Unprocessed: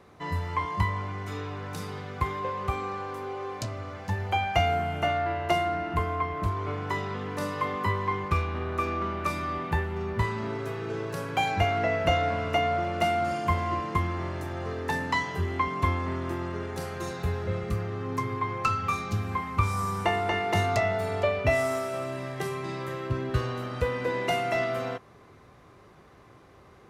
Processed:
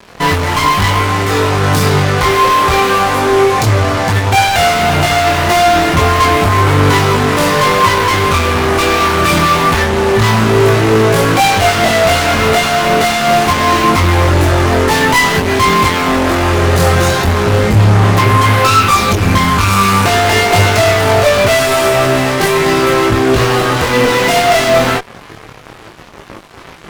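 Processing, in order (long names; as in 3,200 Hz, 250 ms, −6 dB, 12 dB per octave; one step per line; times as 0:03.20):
fuzz pedal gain 41 dB, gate −50 dBFS
multi-voice chorus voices 4, 0.2 Hz, delay 23 ms, depth 5 ms
level +7 dB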